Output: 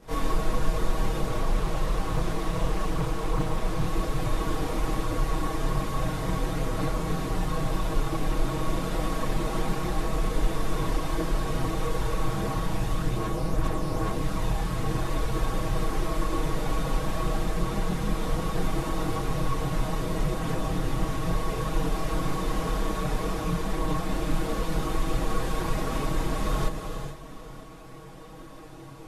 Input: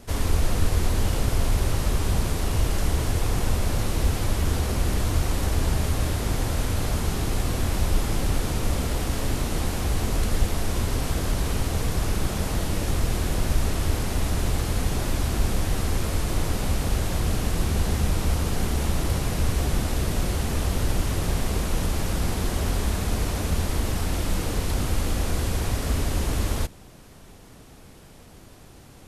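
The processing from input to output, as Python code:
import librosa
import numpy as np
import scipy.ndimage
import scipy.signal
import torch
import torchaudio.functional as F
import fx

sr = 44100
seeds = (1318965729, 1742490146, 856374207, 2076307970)

y = fx.low_shelf(x, sr, hz=140.0, db=-9.0)
y = fx.small_body(y, sr, hz=(1100.0, 3600.0), ring_ms=90, db=12)
y = fx.chorus_voices(y, sr, voices=6, hz=0.61, base_ms=26, depth_ms=4.6, mix_pct=60)
y = fx.high_shelf(y, sr, hz=2300.0, db=-11.0)
y = y + 0.68 * np.pad(y, (int(6.3 * sr / 1000.0), 0))[:len(y)]
y = y + 10.0 ** (-22.5 / 20.0) * np.pad(y, (int(926 * sr / 1000.0), 0))[:len(y)]
y = fx.rev_gated(y, sr, seeds[0], gate_ms=480, shape='rising', drr_db=9.0)
y = fx.rider(y, sr, range_db=5, speed_s=0.5)
y = fx.doppler_dist(y, sr, depth_ms=0.44, at=(1.29, 3.87))
y = y * librosa.db_to_amplitude(2.0)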